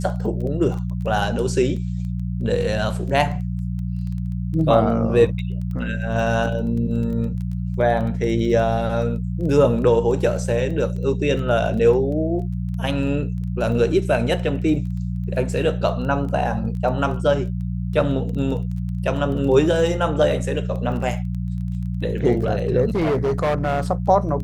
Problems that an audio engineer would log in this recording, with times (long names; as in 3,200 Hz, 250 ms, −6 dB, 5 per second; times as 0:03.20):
surface crackle 14 per second −30 dBFS
mains hum 60 Hz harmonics 3 −25 dBFS
0:22.95–0:23.81: clipping −16.5 dBFS